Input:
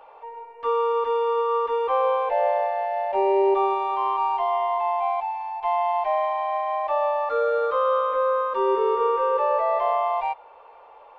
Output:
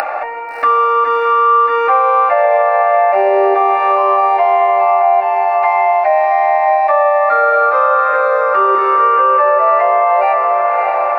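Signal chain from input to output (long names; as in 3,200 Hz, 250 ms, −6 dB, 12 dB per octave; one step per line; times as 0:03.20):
low-pass filter 3,400 Hz 12 dB per octave
hum removal 187.8 Hz, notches 36
on a send at −4.5 dB: convolution reverb RT60 0.60 s, pre-delay 3 ms
on the sum: upward compression, threshold −27 dBFS
spectral tilt +3 dB per octave
phaser with its sweep stopped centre 660 Hz, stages 8
feedback delay with all-pass diffusion 664 ms, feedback 49%, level −7 dB
downward compressor 2.5 to 1, threshold −34 dBFS, peak gain reduction 9 dB
boost into a limiter +24.5 dB
level −2 dB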